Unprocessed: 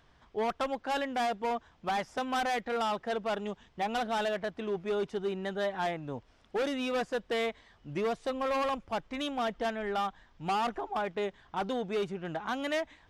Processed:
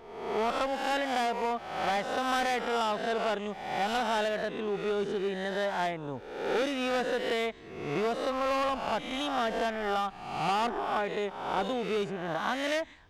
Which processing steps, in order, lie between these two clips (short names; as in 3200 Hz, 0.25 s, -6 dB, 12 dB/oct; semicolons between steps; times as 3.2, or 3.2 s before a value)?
spectral swells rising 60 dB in 0.96 s